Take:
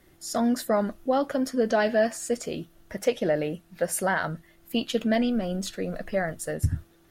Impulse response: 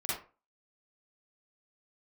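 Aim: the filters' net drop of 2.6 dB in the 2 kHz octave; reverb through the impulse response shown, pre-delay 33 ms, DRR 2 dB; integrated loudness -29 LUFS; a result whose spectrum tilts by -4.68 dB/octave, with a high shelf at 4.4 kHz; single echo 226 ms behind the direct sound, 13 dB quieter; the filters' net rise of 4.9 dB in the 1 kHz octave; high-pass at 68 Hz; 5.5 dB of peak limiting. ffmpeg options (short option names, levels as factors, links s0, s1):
-filter_complex "[0:a]highpass=68,equalizer=f=1000:t=o:g=8.5,equalizer=f=2000:t=o:g=-8.5,highshelf=f=4400:g=5.5,alimiter=limit=0.168:level=0:latency=1,aecho=1:1:226:0.224,asplit=2[s0][s1];[1:a]atrim=start_sample=2205,adelay=33[s2];[s1][s2]afir=irnorm=-1:irlink=0,volume=0.447[s3];[s0][s3]amix=inputs=2:normalize=0,volume=0.668"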